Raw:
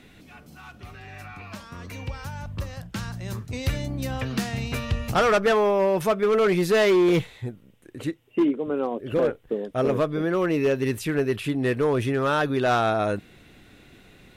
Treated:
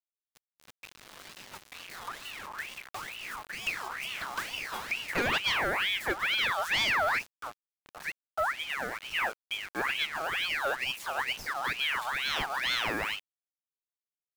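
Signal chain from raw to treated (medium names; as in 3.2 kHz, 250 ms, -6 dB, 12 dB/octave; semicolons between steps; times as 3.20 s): bit crusher 6-bit; ring modulator with a swept carrier 1.9 kHz, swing 50%, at 2.2 Hz; trim -6 dB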